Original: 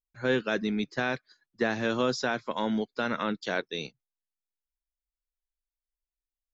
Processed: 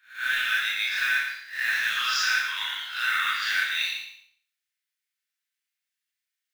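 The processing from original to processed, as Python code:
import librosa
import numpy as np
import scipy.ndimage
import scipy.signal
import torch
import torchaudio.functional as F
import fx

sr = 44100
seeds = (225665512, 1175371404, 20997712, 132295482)

p1 = fx.spec_swells(x, sr, rise_s=0.38)
p2 = scipy.signal.sosfilt(scipy.signal.butter(6, 1600.0, 'highpass', fs=sr, output='sos'), p1)
p3 = fx.high_shelf(p2, sr, hz=2900.0, db=-12.0)
p4 = fx.over_compress(p3, sr, threshold_db=-44.0, ratio=-1.0)
p5 = p3 + (p4 * librosa.db_to_amplitude(-1.5))
p6 = fx.quant_float(p5, sr, bits=2)
p7 = p6 + fx.echo_feedback(p6, sr, ms=114, feedback_pct=26, wet_db=-7, dry=0)
p8 = fx.rev_schroeder(p7, sr, rt60_s=0.52, comb_ms=25, drr_db=-5.0)
y = p8 * librosa.db_to_amplitude(5.0)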